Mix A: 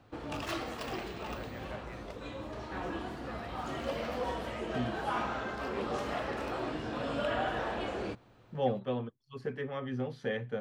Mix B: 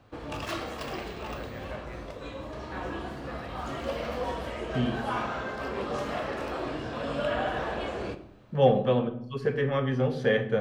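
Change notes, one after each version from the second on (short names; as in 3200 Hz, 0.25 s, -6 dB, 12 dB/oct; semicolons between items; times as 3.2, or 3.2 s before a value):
second voice +6.5 dB; reverb: on, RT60 0.70 s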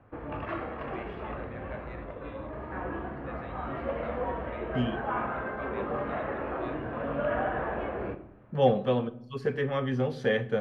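second voice: send -7.5 dB; background: add LPF 2100 Hz 24 dB/oct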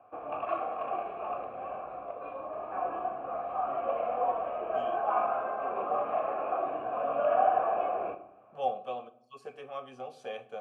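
second voice: remove air absorption 330 m; background +11.5 dB; master: add vowel filter a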